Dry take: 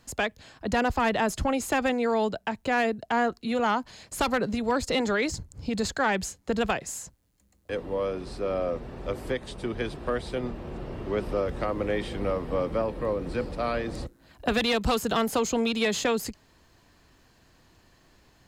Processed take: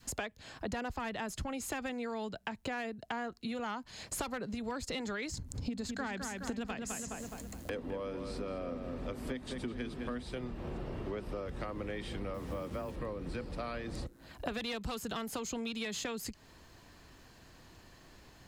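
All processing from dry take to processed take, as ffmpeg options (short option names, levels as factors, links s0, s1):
-filter_complex "[0:a]asettb=1/sr,asplit=3[s0][s1][s2];[s0]atrim=end=5.374[s3];[s1]atrim=start=5.37:end=10.23,asetpts=PTS-STARTPTS,afade=t=in:d=0.004:c=qsin,afade=t=out:st=4.856:d=0.004:c=qsin,equalizer=f=250:w=6.8:g=12,acompressor=mode=upward:threshold=0.0224:ratio=2.5:attack=3.2:release=140:knee=2.83:detection=peak,asplit=2[s4][s5];[s5]adelay=209,lowpass=f=3700:p=1,volume=0.422,asplit=2[s6][s7];[s7]adelay=209,lowpass=f=3700:p=1,volume=0.39,asplit=2[s8][s9];[s9]adelay=209,lowpass=f=3700:p=1,volume=0.39,asplit=2[s10][s11];[s11]adelay=209,lowpass=f=3700:p=1,volume=0.39[s12];[s4][s6][s8][s10][s12]amix=inputs=5:normalize=0,atrim=end_sample=214326[s13];[s2]atrim=start=10.226[s14];[s3][s13]acrossfade=d=0.004:c1=hsin:c2=qsin[s15];[s15][s14]acrossfade=d=0.004:c1=qsin:c2=hsin,asettb=1/sr,asplit=3[s16][s17][s18];[s16]atrim=end=12.344[s19];[s17]atrim=start=12.34:end=12.96,asetpts=PTS-STARTPTS,afade=t=in:d=0.004:c=qsin,afade=t=out:st=0.616:d=0.004:c=qsin,afreqshift=22,acrusher=bits=7:mix=0:aa=0.5[s20];[s18]atrim=start=12.956[s21];[s19][s20]acrossfade=d=0.004:c1=hsin:c2=qsin[s22];[s22][s21]acrossfade=d=0.004:c1=qsin:c2=hsin,adynamicequalizer=threshold=0.0112:dfrequency=590:dqfactor=0.74:tfrequency=590:tqfactor=0.74:attack=5:release=100:ratio=0.375:range=3:mode=cutabove:tftype=bell,acompressor=threshold=0.0112:ratio=6,volume=1.33"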